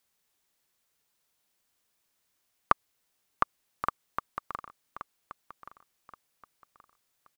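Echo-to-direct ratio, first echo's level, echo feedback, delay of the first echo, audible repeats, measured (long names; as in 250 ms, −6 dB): −12.0 dB, −12.5 dB, 30%, 1,126 ms, 3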